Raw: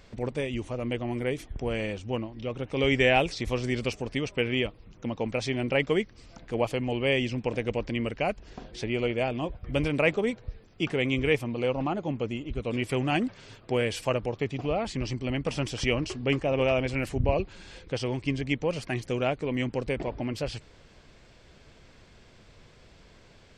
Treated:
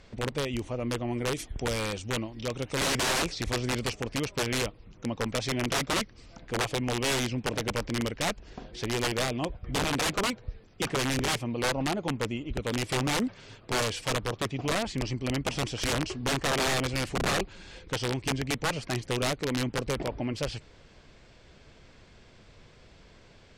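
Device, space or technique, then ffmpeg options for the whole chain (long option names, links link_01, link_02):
overflowing digital effects unit: -filter_complex "[0:a]asettb=1/sr,asplit=3[link_01][link_02][link_03];[link_01]atrim=end=1.344[link_04];[link_02]atrim=start=1.34:end=2.87,asetpts=PTS-STARTPTS,afade=type=in:duration=0.004:curve=qsin,afade=type=out:start_time=1.526:duration=0.004:curve=qsin,aemphasis=mode=production:type=75kf[link_05];[link_03]atrim=start=2.866[link_06];[link_04][link_05]acrossfade=duration=0.004:curve1=hsin:curve2=qsin[link_07];[link_07][link_06]acrossfade=duration=0.004:curve1=qsin:curve2=hsin,aeval=exprs='(mod(11.9*val(0)+1,2)-1)/11.9':channel_layout=same,lowpass=9300"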